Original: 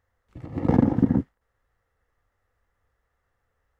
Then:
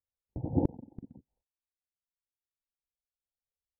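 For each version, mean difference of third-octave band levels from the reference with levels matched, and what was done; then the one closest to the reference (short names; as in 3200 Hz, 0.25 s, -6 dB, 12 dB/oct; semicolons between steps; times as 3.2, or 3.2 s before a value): 11.0 dB: gate -47 dBFS, range -30 dB; steep low-pass 920 Hz 96 dB/oct; reverb removal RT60 1.4 s; flipped gate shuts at -15 dBFS, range -32 dB; gain +3.5 dB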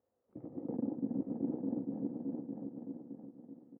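6.0 dB: regenerating reverse delay 0.309 s, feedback 61%, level -11.5 dB; reverse; compressor 8:1, threshold -32 dBFS, peak gain reduction 20 dB; reverse; Butterworth band-pass 360 Hz, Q 0.86; echo 0.846 s -5 dB; gain +1 dB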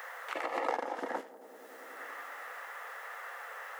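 18.5 dB: HPF 520 Hz 24 dB/oct; tilt +3.5 dB/oct; on a send: tape echo 96 ms, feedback 76%, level -19.5 dB, low-pass 1200 Hz; on the sum: three-band squash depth 100%; gain +4.5 dB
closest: second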